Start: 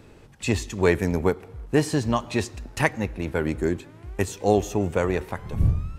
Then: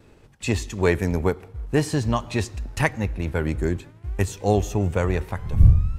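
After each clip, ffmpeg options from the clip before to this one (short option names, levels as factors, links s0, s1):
-af "acompressor=mode=upward:threshold=0.0158:ratio=2.5,asubboost=boost=2.5:cutoff=160,agate=range=0.0224:threshold=0.0158:ratio=3:detection=peak"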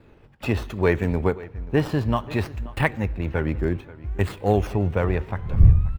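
-filter_complex "[0:a]acrossover=split=3900[s0][s1];[s0]aecho=1:1:533:0.106[s2];[s1]acrusher=samples=14:mix=1:aa=0.000001:lfo=1:lforange=14:lforate=0.63[s3];[s2][s3]amix=inputs=2:normalize=0"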